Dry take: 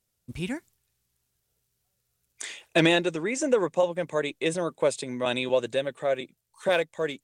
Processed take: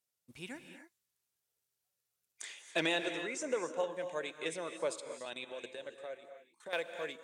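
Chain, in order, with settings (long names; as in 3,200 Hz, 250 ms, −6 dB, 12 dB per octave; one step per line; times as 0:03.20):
high-pass filter 520 Hz 6 dB per octave
0:05.00–0:06.73: output level in coarse steps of 17 dB
reverb whose tail is shaped and stops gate 310 ms rising, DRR 7.5 dB
level −9 dB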